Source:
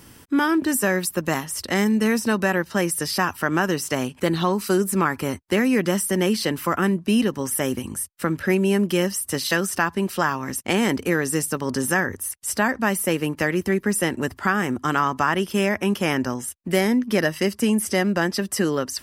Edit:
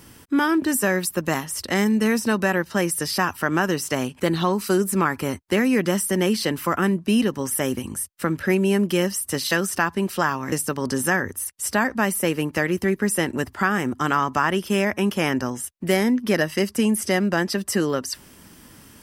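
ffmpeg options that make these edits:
-filter_complex "[0:a]asplit=2[s0][s1];[s0]atrim=end=10.522[s2];[s1]atrim=start=11.358[s3];[s2][s3]acrossfade=d=0.004:c1=hsin:c2=hsin"

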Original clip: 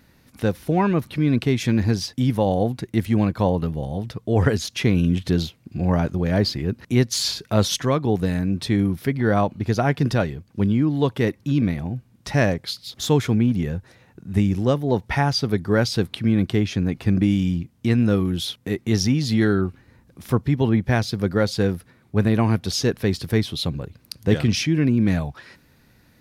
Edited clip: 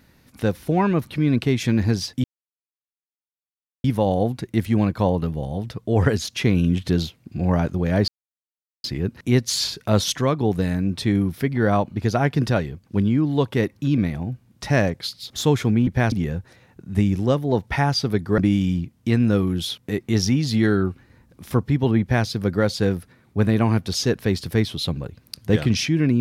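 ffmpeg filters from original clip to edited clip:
-filter_complex "[0:a]asplit=6[s0][s1][s2][s3][s4][s5];[s0]atrim=end=2.24,asetpts=PTS-STARTPTS,afade=t=out:st=2.236:d=0.004:c=hsin,apad=pad_dur=1.6[s6];[s1]atrim=start=2.24:end=6.48,asetpts=PTS-STARTPTS,afade=t=in:d=0.004:c=hsin,afade=t=out:st=4.236:d=0.004:c=hsin,apad=pad_dur=0.76[s7];[s2]atrim=start=6.48:end=13.512,asetpts=PTS-STARTPTS,afade=t=in:d=0.004:c=hsin[s8];[s3]atrim=start=20.788:end=21.042[s9];[s4]atrim=start=13.508:end=15.772[s10];[s5]atrim=start=17.158[s11];[s6][s7][s8]concat=n=3:v=0:a=1[s12];[s12][s9]acrossfade=d=0.004:c1=hsin:c2=hsin[s13];[s13][s10]acrossfade=d=0.004:c1=hsin:c2=hsin[s14];[s14][s11]acrossfade=d=0.004:c1=hsin:c2=hsin"

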